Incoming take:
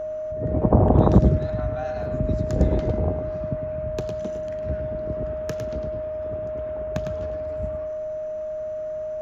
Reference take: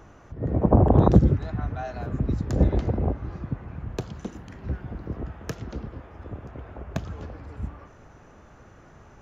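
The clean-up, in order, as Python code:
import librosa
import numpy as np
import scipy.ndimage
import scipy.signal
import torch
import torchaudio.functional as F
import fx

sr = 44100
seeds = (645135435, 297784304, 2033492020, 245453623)

y = fx.notch(x, sr, hz=620.0, q=30.0)
y = fx.fix_echo_inverse(y, sr, delay_ms=105, level_db=-7.0)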